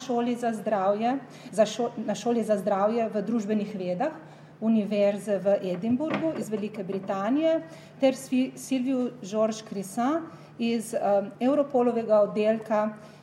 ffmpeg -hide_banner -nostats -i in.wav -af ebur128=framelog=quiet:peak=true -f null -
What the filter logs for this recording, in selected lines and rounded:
Integrated loudness:
  I:         -26.9 LUFS
  Threshold: -37.0 LUFS
Loudness range:
  LRA:         2.1 LU
  Threshold: -47.3 LUFS
  LRA low:   -28.1 LUFS
  LRA high:  -26.0 LUFS
True peak:
  Peak:      -10.1 dBFS